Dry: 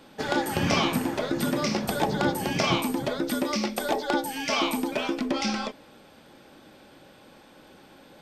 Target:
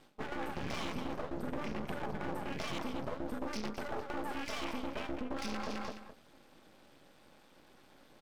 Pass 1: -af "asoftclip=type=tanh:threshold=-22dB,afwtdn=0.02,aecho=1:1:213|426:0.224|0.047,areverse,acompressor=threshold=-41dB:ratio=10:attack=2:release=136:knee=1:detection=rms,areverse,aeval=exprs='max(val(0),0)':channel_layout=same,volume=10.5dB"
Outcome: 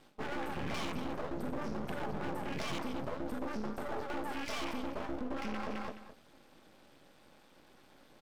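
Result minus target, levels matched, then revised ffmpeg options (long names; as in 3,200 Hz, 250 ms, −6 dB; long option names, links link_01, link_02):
soft clipping: distortion +16 dB
-af "asoftclip=type=tanh:threshold=-10.5dB,afwtdn=0.02,aecho=1:1:213|426:0.224|0.047,areverse,acompressor=threshold=-41dB:ratio=10:attack=2:release=136:knee=1:detection=rms,areverse,aeval=exprs='max(val(0),0)':channel_layout=same,volume=10.5dB"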